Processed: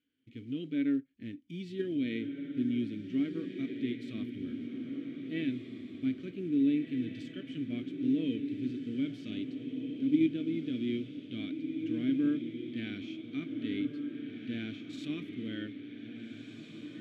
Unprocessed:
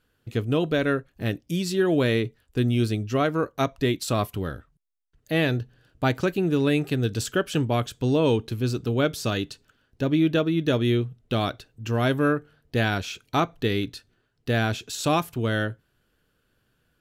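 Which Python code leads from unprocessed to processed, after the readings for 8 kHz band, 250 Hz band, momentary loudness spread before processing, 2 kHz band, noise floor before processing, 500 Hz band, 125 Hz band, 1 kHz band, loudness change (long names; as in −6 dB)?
below −25 dB, −5.0 dB, 8 LU, −17.0 dB, −71 dBFS, −17.0 dB, −19.0 dB, below −30 dB, −10.0 dB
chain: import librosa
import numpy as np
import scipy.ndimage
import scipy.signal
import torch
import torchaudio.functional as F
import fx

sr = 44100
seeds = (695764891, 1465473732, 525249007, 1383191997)

p1 = fx.hpss(x, sr, part='percussive', gain_db=-11)
p2 = fx.level_steps(p1, sr, step_db=19)
p3 = p1 + (p2 * 10.0 ** (-1.5 / 20.0))
p4 = fx.quant_float(p3, sr, bits=4)
p5 = fx.vowel_filter(p4, sr, vowel='i')
y = p5 + fx.echo_diffused(p5, sr, ms=1699, feedback_pct=43, wet_db=-6.0, dry=0)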